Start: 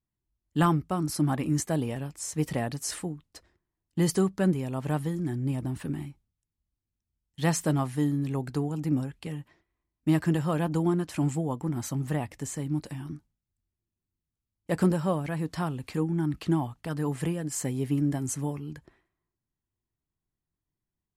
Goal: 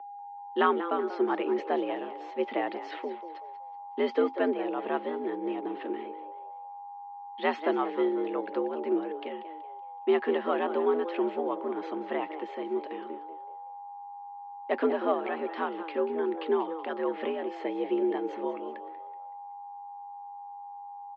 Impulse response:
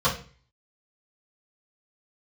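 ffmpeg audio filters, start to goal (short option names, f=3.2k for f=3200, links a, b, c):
-filter_complex "[0:a]aeval=exprs='val(0)+0.00794*sin(2*PI*740*n/s)':c=same,asplit=5[a][b][c][d][e];[b]adelay=188,afreqshift=92,volume=-13dB[f];[c]adelay=376,afreqshift=184,volume=-21.6dB[g];[d]adelay=564,afreqshift=276,volume=-30.3dB[h];[e]adelay=752,afreqshift=368,volume=-38.9dB[i];[a][f][g][h][i]amix=inputs=5:normalize=0,highpass=f=240:t=q:w=0.5412,highpass=f=240:t=q:w=1.307,lowpass=f=3.4k:t=q:w=0.5176,lowpass=f=3.4k:t=q:w=0.7071,lowpass=f=3.4k:t=q:w=1.932,afreqshift=72,volume=1.5dB"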